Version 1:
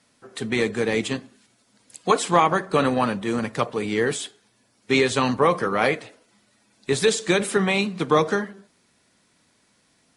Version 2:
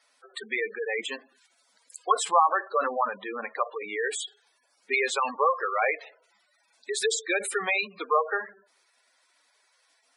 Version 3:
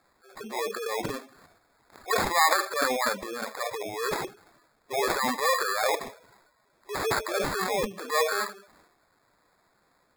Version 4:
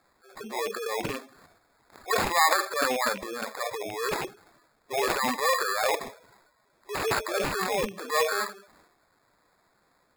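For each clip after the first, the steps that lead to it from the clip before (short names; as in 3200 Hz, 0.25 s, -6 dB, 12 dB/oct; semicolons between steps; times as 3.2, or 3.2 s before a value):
HPF 650 Hz 12 dB/oct; spectral gate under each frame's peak -10 dB strong
transient shaper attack -8 dB, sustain +9 dB; sample-and-hold 15×
rattling part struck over -40 dBFS, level -25 dBFS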